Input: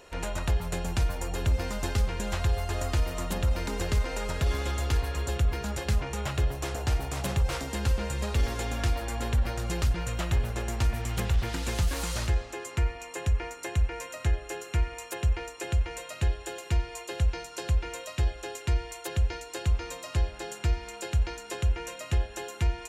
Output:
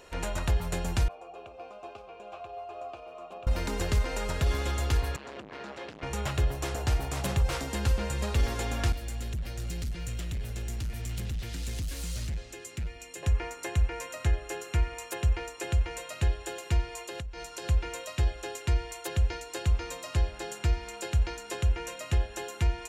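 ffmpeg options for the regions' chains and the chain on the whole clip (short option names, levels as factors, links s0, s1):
-filter_complex "[0:a]asettb=1/sr,asplit=3[s0][s1][s2];[s0]atrim=end=1.084[s3];[s1]atrim=start=1.08:end=3.47,asetpts=PTS-STARTPTS,afade=t=in:d=0.004:c=qsin,afade=t=out:st=2.386:d=0.004:c=qsin,asplit=3[s4][s5][s6];[s4]bandpass=f=730:t=q:w=8,volume=1[s7];[s5]bandpass=f=1090:t=q:w=8,volume=0.501[s8];[s6]bandpass=f=2440:t=q:w=8,volume=0.355[s9];[s7][s8][s9]amix=inputs=3:normalize=0,equalizer=f=400:w=2:g=8[s10];[s2]atrim=start=3.466[s11];[s3][s10]acrossfade=d=0.004:c1=hsin:c2=qsin[s12];[s12][s11]acrossfade=d=0.004:c1=qsin:c2=hsin,asettb=1/sr,asplit=3[s13][s14][s15];[s13]atrim=end=5.164[s16];[s14]atrim=start=5.16:end=6.03,asetpts=PTS-STARTPTS,afade=t=in:d=0.004:c=qsin,afade=t=out:st=0.866:d=0.004:c=qsin,volume=56.2,asoftclip=hard,volume=0.0178,highpass=250,lowpass=3500[s17];[s15]atrim=start=6.026[s18];[s16][s17]acrossfade=d=0.004:c1=hsin:c2=qsin[s19];[s19][s18]acrossfade=d=0.004:c1=qsin:c2=hsin,asettb=1/sr,asplit=3[s20][s21][s22];[s20]atrim=end=8.924[s23];[s21]atrim=start=8.92:end=13.23,asetpts=PTS-STARTPTS,afade=t=in:d=0.004:c=qsin,afade=t=out:st=4.306:d=0.004:c=qsin,acrossover=split=210|420[s24][s25][s26];[s24]acompressor=threshold=0.0398:ratio=4[s27];[s25]acompressor=threshold=0.00251:ratio=4[s28];[s26]acompressor=threshold=0.0158:ratio=4[s29];[s27][s28][s29]amix=inputs=3:normalize=0,asoftclip=type=hard:threshold=0.0355,equalizer=f=980:w=0.82:g=-13[s30];[s22]atrim=start=13.226[s31];[s23][s30]acrossfade=d=0.004:c1=hsin:c2=qsin[s32];[s32][s31]acrossfade=d=0.004:c1=qsin:c2=hsin,asettb=1/sr,asplit=3[s33][s34][s35];[s33]atrim=end=16.934[s36];[s34]atrim=start=16.93:end=17.65,asetpts=PTS-STARTPTS,afade=t=in:d=0.004:c=qsin,afade=t=out:st=0.716:d=0.004:c=qsin,asubboost=boost=9:cutoff=66,acompressor=threshold=0.02:ratio=20:attack=3.2:release=140:knee=1:detection=peak[s37];[s35]atrim=start=17.646[s38];[s36][s37]acrossfade=d=0.004:c1=hsin:c2=qsin[s39];[s39][s38]acrossfade=d=0.004:c1=qsin:c2=hsin"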